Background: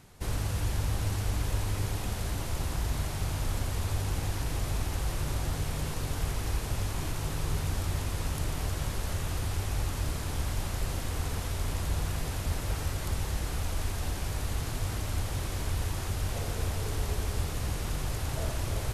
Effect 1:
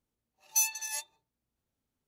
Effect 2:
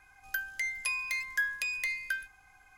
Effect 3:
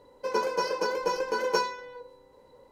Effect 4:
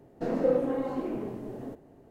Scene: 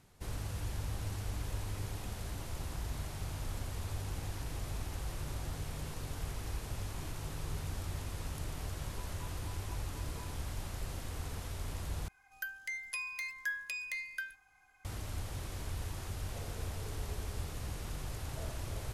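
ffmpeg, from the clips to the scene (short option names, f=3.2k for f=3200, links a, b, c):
-filter_complex "[0:a]volume=-8.5dB[a];[3:a]asplit=3[b][c][d];[b]bandpass=f=300:t=q:w=8,volume=0dB[e];[c]bandpass=f=870:t=q:w=8,volume=-6dB[f];[d]bandpass=f=2.24k:t=q:w=8,volume=-9dB[g];[e][f][g]amix=inputs=3:normalize=0[h];[2:a]lowshelf=f=140:g=-4[i];[a]asplit=2[j][k];[j]atrim=end=12.084[l];[i]atrim=end=2.77,asetpts=PTS-STARTPTS,volume=-6.5dB[m];[k]atrim=start=14.846[n];[h]atrim=end=2.71,asetpts=PTS-STARTPTS,volume=-11.5dB,afade=t=in:d=0.004:c=hsin,afade=t=out:st=2.706:d=0.004:c=hsin,adelay=8630[o];[l][m]acrossfade=d=0.004:c1=hsin:c2=hsin[p];[p][n]acrossfade=d=0.004:c1=hsin:c2=hsin[q];[q][o]amix=inputs=2:normalize=0"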